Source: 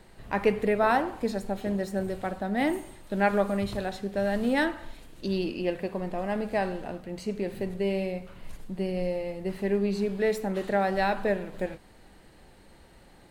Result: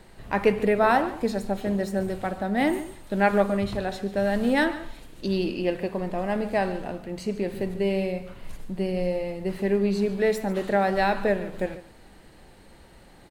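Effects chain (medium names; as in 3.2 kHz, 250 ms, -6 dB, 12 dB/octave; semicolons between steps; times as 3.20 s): 3.46–3.88 s: treble shelf 9.7 kHz -> 5.3 kHz -7 dB; delay 144 ms -16 dB; trim +3 dB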